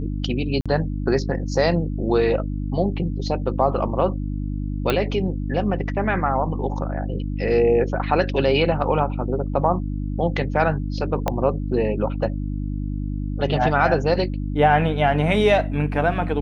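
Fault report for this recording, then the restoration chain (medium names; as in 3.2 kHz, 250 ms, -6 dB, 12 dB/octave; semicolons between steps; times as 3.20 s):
hum 50 Hz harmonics 6 -26 dBFS
0.61–0.66 s: dropout 46 ms
4.90 s: pop -8 dBFS
11.28 s: pop -8 dBFS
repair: de-click; de-hum 50 Hz, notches 6; interpolate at 0.61 s, 46 ms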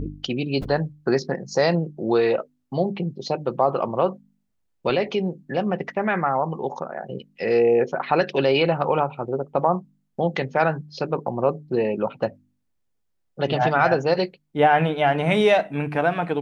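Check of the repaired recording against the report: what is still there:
11.28 s: pop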